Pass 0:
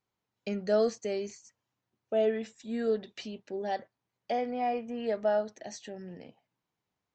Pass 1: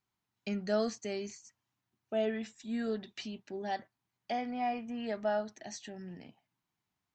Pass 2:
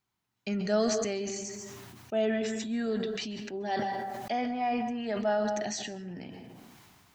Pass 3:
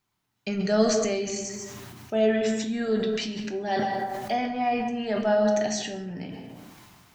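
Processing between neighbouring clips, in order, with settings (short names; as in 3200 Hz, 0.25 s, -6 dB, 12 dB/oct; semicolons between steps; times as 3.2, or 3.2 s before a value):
bell 500 Hz -11.5 dB 0.59 oct
plate-style reverb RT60 0.63 s, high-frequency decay 0.55×, pre-delay 0.12 s, DRR 13 dB; sustainer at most 23 dB/s; gain +3 dB
shoebox room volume 87 m³, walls mixed, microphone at 0.39 m; gain +4 dB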